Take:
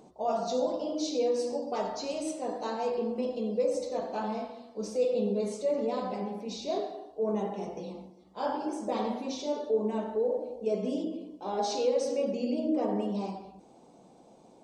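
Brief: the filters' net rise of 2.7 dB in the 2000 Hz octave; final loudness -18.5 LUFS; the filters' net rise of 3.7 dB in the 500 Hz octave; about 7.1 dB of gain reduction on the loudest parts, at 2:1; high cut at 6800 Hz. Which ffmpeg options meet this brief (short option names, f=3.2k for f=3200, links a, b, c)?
-af "lowpass=6.8k,equalizer=f=500:t=o:g=4,equalizer=f=2k:t=o:g=3.5,acompressor=threshold=-32dB:ratio=2,volume=15dB"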